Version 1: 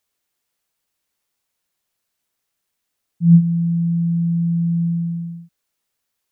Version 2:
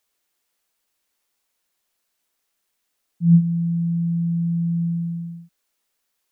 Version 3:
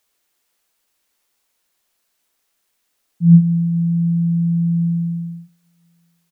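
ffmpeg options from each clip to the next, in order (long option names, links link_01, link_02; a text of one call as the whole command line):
ffmpeg -i in.wav -af "equalizer=frequency=110:width=1.6:gain=-14.5,volume=2dB" out.wav
ffmpeg -i in.wav -af "aecho=1:1:182|364|546|728|910:0.0891|0.0517|0.03|0.0174|0.0101,volume=5dB" out.wav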